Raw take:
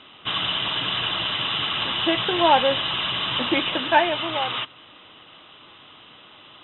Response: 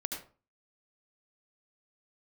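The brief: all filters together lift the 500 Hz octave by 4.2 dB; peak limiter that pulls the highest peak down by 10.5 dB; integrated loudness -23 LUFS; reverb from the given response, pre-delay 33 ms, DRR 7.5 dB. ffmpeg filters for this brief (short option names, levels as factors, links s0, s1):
-filter_complex "[0:a]equalizer=f=500:t=o:g=5.5,alimiter=limit=0.211:level=0:latency=1,asplit=2[s0][s1];[1:a]atrim=start_sample=2205,adelay=33[s2];[s1][s2]afir=irnorm=-1:irlink=0,volume=0.355[s3];[s0][s3]amix=inputs=2:normalize=0,volume=0.891"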